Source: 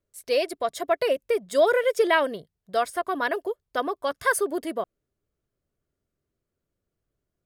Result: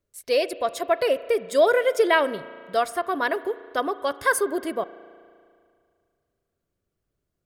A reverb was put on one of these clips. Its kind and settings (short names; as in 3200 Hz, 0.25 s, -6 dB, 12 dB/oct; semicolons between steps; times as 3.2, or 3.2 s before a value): spring tank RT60 2.2 s, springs 35 ms, chirp 50 ms, DRR 15.5 dB; gain +1.5 dB